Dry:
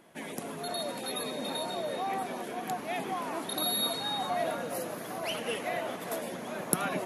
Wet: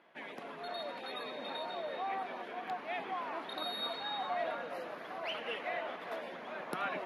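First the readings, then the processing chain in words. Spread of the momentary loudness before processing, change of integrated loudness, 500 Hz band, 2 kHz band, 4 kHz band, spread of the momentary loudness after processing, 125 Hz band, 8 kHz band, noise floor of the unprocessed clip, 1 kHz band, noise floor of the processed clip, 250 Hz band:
8 LU, -6.0 dB, -6.0 dB, -2.5 dB, -7.0 dB, 7 LU, -15.0 dB, -26.5 dB, -41 dBFS, -4.0 dB, -47 dBFS, -11.5 dB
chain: HPF 1200 Hz 6 dB/oct; air absorption 340 m; gain +2.5 dB

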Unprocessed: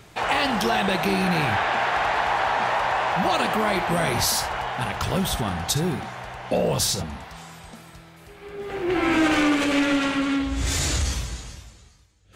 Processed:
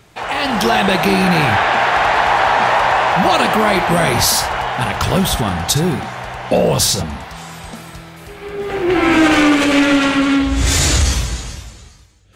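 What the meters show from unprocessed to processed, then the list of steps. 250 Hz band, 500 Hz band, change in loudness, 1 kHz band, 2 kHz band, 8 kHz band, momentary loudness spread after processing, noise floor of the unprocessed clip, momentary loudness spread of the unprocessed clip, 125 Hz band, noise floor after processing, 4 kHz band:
+8.5 dB, +8.5 dB, +8.5 dB, +8.5 dB, +8.5 dB, +9.0 dB, 15 LU, -49 dBFS, 14 LU, +9.0 dB, -42 dBFS, +8.5 dB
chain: AGC gain up to 11.5 dB

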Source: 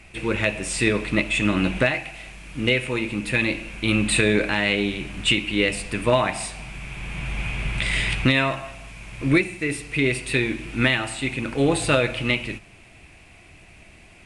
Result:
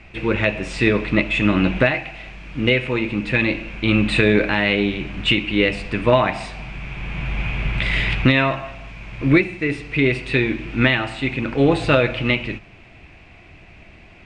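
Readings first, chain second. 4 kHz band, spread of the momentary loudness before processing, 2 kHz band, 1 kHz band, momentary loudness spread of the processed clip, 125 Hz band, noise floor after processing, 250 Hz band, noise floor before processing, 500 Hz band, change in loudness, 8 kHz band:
+1.0 dB, 13 LU, +2.5 dB, +3.5 dB, 14 LU, +4.5 dB, -46 dBFS, +4.5 dB, -49 dBFS, +4.0 dB, +3.0 dB, under -10 dB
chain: air absorption 170 m; gain +4.5 dB

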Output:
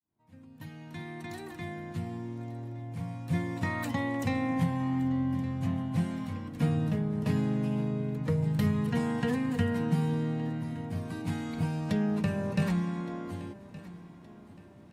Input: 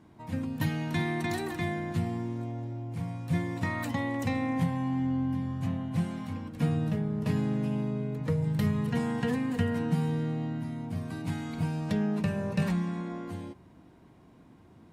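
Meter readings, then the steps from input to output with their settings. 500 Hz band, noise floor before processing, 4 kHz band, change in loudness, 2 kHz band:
-0.5 dB, -56 dBFS, -2.0 dB, -0.5 dB, -1.5 dB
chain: opening faded in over 3.82 s; feedback echo 1.168 s, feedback 43%, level -18 dB

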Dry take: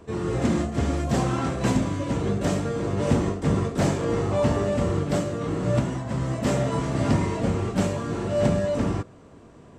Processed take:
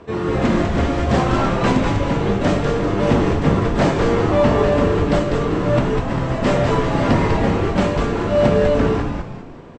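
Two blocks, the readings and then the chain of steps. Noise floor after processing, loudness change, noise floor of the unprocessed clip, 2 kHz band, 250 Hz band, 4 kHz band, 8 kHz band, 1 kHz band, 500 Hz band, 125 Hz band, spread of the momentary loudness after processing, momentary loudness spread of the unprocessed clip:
-33 dBFS, +7.0 dB, -48 dBFS, +10.0 dB, +6.5 dB, +8.0 dB, -0.5 dB, +9.5 dB, +8.5 dB, +5.0 dB, 5 LU, 4 LU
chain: LPF 3900 Hz 12 dB/oct; low shelf 280 Hz -7 dB; on a send: frequency-shifting echo 0.198 s, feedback 40%, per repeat -150 Hz, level -4 dB; on the sum: gain +9 dB

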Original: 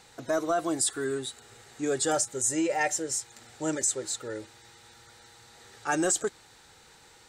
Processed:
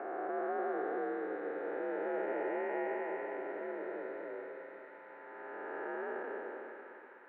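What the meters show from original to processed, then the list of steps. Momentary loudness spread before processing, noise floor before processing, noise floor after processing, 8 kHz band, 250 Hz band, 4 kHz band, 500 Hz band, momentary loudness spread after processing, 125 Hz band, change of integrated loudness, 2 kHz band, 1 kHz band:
12 LU, -56 dBFS, -53 dBFS, under -40 dB, -10.0 dB, under -25 dB, -5.0 dB, 13 LU, under -20 dB, -10.5 dB, -7.0 dB, -5.5 dB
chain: time blur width 0.906 s; mistuned SSB +58 Hz 200–2100 Hz; split-band echo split 870 Hz, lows 0.249 s, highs 0.791 s, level -11.5 dB; gain +1 dB

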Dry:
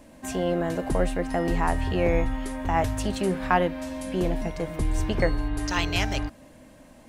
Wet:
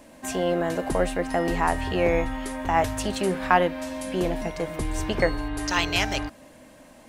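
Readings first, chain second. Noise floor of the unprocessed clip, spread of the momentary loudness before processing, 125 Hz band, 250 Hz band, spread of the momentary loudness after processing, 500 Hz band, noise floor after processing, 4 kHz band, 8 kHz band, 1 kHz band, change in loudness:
-51 dBFS, 7 LU, -3.0 dB, 0.0 dB, 9 LU, +2.0 dB, -50 dBFS, +3.5 dB, +3.5 dB, +3.0 dB, +1.0 dB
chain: low shelf 230 Hz -8.5 dB; gain +3.5 dB

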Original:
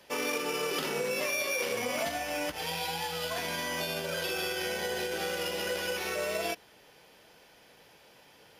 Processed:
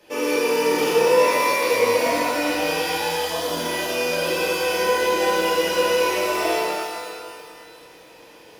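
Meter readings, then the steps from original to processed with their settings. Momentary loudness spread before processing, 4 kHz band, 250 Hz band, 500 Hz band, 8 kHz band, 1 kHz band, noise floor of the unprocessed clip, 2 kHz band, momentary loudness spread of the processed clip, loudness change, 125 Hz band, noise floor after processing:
3 LU, +8.0 dB, +12.5 dB, +14.0 dB, +8.0 dB, +14.0 dB, -58 dBFS, +9.0 dB, 7 LU, +11.5 dB, +6.0 dB, -47 dBFS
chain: spectral delete 3.19–3.59, 1300–2900 Hz; small resonant body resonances 330/470/2500 Hz, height 12 dB, ringing for 50 ms; shimmer reverb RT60 2 s, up +12 st, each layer -8 dB, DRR -8 dB; gain -2 dB

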